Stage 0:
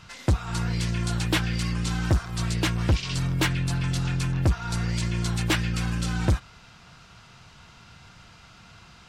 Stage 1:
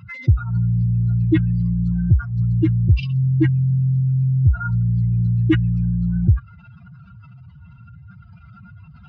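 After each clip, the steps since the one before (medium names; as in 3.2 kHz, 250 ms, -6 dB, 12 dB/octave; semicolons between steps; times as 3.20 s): spectral contrast enhancement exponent 3.4; high-pass 64 Hz 24 dB/octave; trim +9 dB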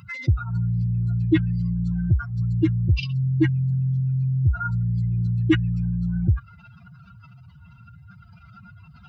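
tone controls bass -5 dB, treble +9 dB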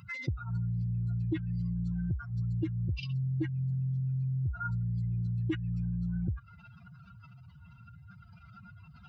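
compression 6:1, threshold -24 dBFS, peak gain reduction 11 dB; trim -5.5 dB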